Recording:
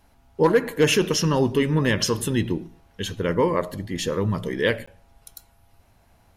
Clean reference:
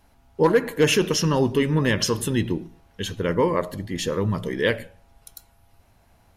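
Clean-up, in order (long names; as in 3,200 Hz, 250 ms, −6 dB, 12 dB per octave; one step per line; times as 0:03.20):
repair the gap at 0:04.86, 15 ms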